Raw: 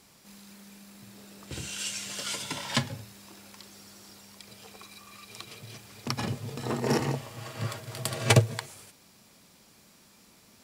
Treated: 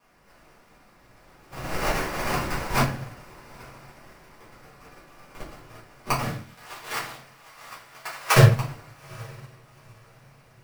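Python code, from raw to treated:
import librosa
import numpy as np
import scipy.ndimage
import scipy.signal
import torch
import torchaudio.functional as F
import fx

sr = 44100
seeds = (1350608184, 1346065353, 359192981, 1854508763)

y = scipy.signal.sosfilt(scipy.signal.butter(2, 8700.0, 'lowpass', fs=sr, output='sos'), x)
y = fx.peak_eq(y, sr, hz=6300.0, db=10.5, octaves=1.9)
y = fx.sample_hold(y, sr, seeds[0], rate_hz=3600.0, jitter_pct=20)
y = fx.highpass(y, sr, hz=960.0, slope=12, at=(6.3, 8.35), fade=0.02)
y = fx.echo_diffused(y, sr, ms=844, feedback_pct=45, wet_db=-15)
y = fx.room_shoebox(y, sr, seeds[1], volume_m3=59.0, walls='mixed', distance_m=1.8)
y = fx.upward_expand(y, sr, threshold_db=-34.0, expansion=1.5)
y = y * 10.0 ** (-2.5 / 20.0)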